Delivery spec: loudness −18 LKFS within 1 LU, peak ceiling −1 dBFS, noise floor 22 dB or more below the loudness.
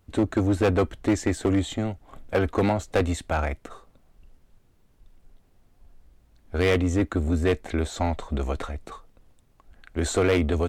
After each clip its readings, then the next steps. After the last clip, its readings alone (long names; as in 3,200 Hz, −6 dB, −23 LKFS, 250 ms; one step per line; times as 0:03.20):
share of clipped samples 1.1%; peaks flattened at −15.0 dBFS; integrated loudness −25.5 LKFS; sample peak −15.0 dBFS; target loudness −18.0 LKFS
→ clipped peaks rebuilt −15 dBFS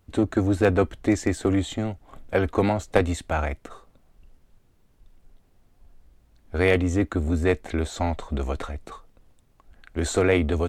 share of clipped samples 0.0%; integrated loudness −24.5 LKFS; sample peak −6.0 dBFS; target loudness −18.0 LKFS
→ level +6.5 dB
brickwall limiter −1 dBFS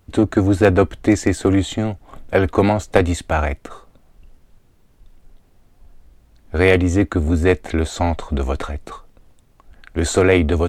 integrated loudness −18.5 LKFS; sample peak −1.0 dBFS; background noise floor −54 dBFS